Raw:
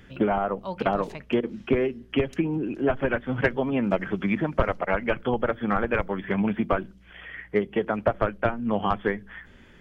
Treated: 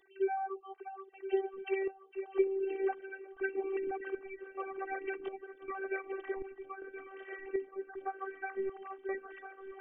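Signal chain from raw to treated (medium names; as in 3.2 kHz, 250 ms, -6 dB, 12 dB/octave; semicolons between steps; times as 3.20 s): formants replaced by sine waves; 1.48–2.12 s: tilt EQ +3.5 dB/octave; 7.67–8.41 s: brick-wall FIR band-pass 220–1900 Hz; shuffle delay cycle 1365 ms, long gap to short 3:1, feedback 44%, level -11 dB; square tremolo 0.88 Hz, depth 65%, duty 65%; robot voice 388 Hz; trim -8 dB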